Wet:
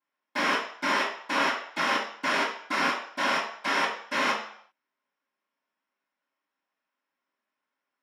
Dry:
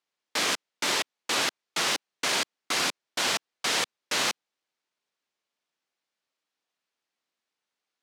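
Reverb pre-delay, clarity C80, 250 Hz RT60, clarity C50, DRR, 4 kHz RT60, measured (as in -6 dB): 3 ms, 8.5 dB, 0.45 s, 5.0 dB, -16.0 dB, 0.60 s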